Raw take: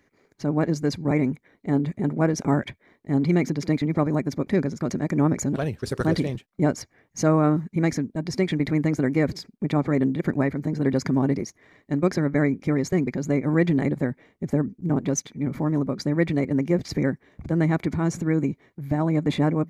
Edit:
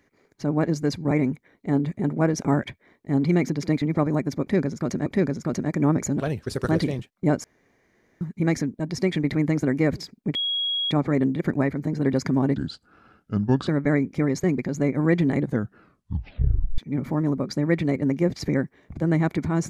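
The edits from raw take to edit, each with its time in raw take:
4.42–5.06 loop, 2 plays
6.8–7.57 room tone
9.71 add tone 3310 Hz -22.5 dBFS 0.56 s
11.36–12.16 speed 72%
13.9 tape stop 1.37 s

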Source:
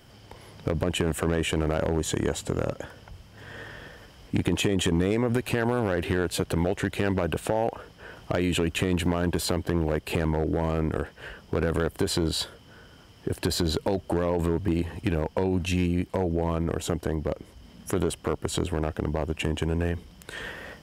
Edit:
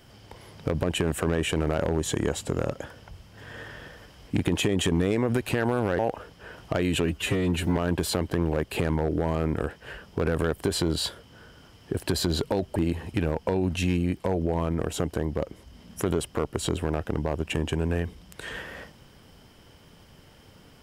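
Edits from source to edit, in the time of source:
5.99–7.58 cut
8.65–9.12 stretch 1.5×
14.11–14.65 cut

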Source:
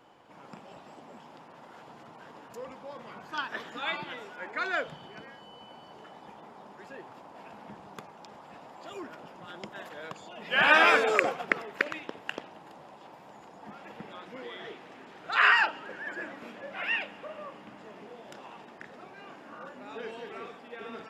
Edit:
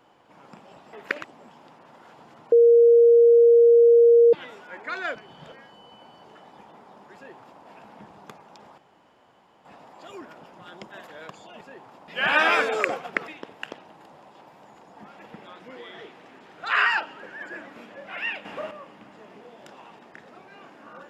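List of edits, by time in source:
2.21–4.02 bleep 469 Hz -11 dBFS
4.84–5.21 reverse
6.84–7.31 copy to 10.43
8.47 insert room tone 0.87 s
11.63–11.94 move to 0.93
17.11–17.37 gain +8.5 dB

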